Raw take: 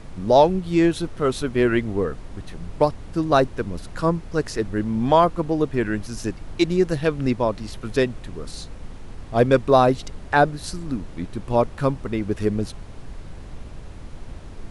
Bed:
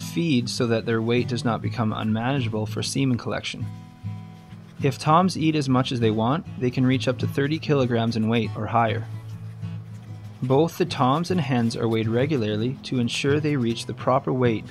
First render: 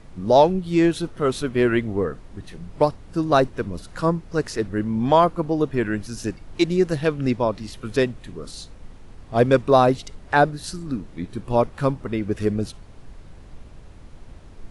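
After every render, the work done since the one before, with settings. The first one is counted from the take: noise print and reduce 6 dB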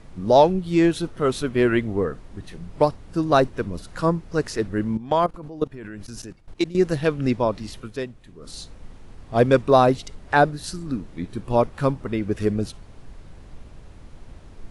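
4.97–6.75 level quantiser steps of 18 dB; 7.78–8.53 dip -9.5 dB, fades 0.13 s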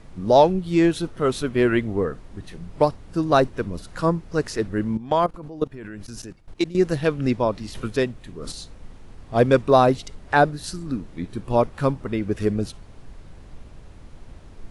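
7.75–8.52 gain +7.5 dB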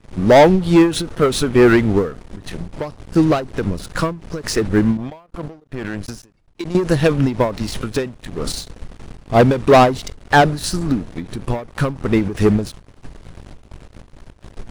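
sample leveller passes 3; ending taper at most 140 dB/s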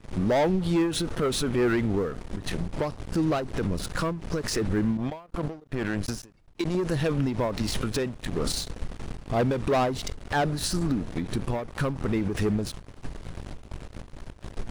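compressor 6:1, threshold -20 dBFS, peak gain reduction 12.5 dB; limiter -18 dBFS, peak gain reduction 10 dB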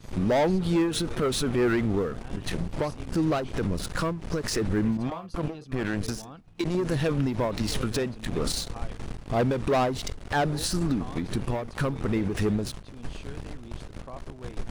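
add bed -22.5 dB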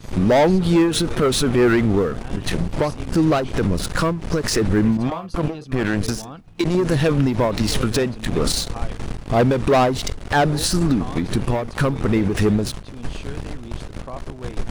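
gain +8 dB

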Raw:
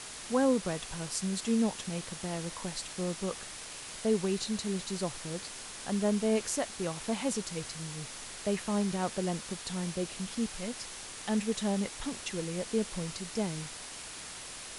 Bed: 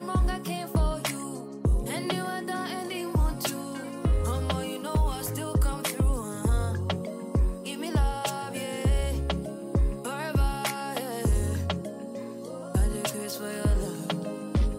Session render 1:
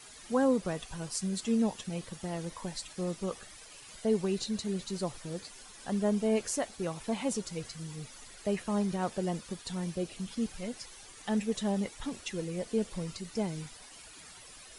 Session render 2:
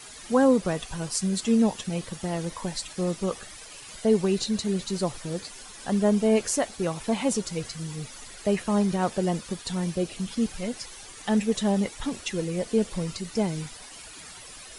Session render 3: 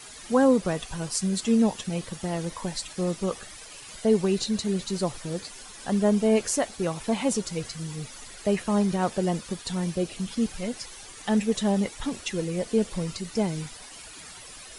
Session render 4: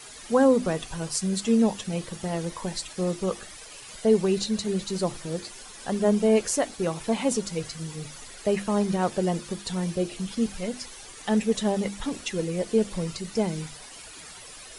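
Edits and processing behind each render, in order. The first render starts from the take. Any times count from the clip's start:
denoiser 12 dB, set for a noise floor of -44 dBFS
gain +7 dB
nothing audible
bell 450 Hz +2 dB; notches 50/100/150/200/250/300/350 Hz

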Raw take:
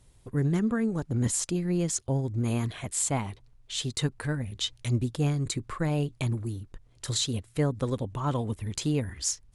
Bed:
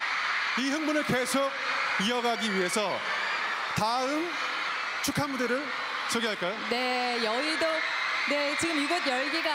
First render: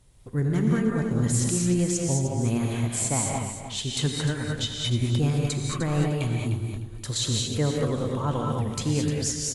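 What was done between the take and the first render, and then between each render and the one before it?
feedback echo 0.303 s, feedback 21%, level -10 dB; non-linear reverb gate 0.24 s rising, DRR -0.5 dB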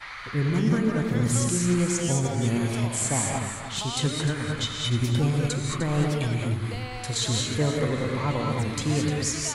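add bed -9.5 dB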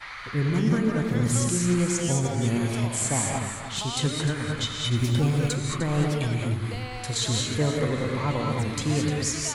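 4.96–5.55 G.711 law mismatch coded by mu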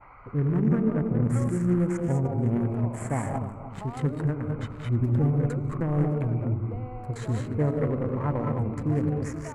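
Wiener smoothing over 25 samples; EQ curve 2000 Hz 0 dB, 3700 Hz -23 dB, 10000 Hz -14 dB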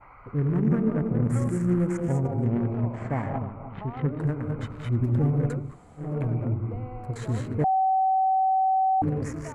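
2.44–4.19 LPF 5700 Hz -> 2700 Hz 24 dB/oct; 5.66–6.08 room tone, crossfade 0.24 s; 7.64–9.02 bleep 762 Hz -19 dBFS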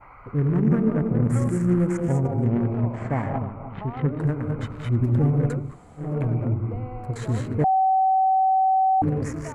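gain +3 dB

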